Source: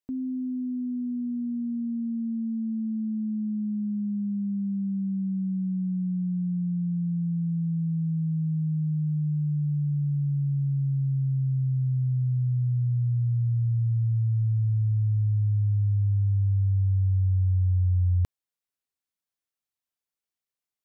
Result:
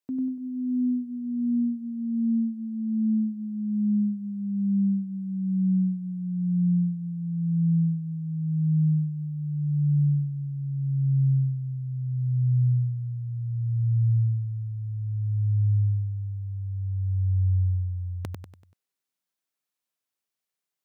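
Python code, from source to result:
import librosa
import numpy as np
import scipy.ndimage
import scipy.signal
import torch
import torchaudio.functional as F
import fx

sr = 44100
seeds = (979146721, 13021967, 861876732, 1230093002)

y = scipy.signal.sosfilt(scipy.signal.butter(2, 130.0, 'highpass', fs=sr, output='sos'), x)
y = fx.echo_feedback(y, sr, ms=96, feedback_pct=43, wet_db=-4)
y = y * librosa.db_to_amplitude(1.5)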